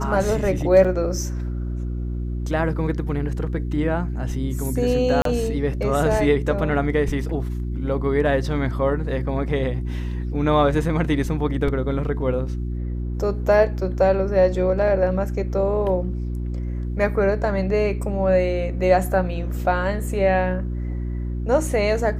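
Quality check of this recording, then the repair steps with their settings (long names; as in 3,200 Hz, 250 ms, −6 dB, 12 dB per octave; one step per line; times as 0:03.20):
mains hum 60 Hz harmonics 6 −26 dBFS
0:00.84–0:00.85: drop-out 6.1 ms
0:05.22–0:05.25: drop-out 33 ms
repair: hum removal 60 Hz, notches 6
repair the gap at 0:00.84, 6.1 ms
repair the gap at 0:05.22, 33 ms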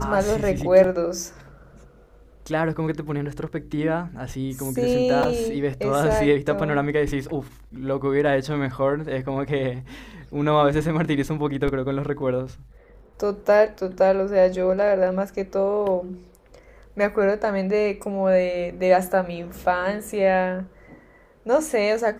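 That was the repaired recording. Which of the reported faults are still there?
none of them is left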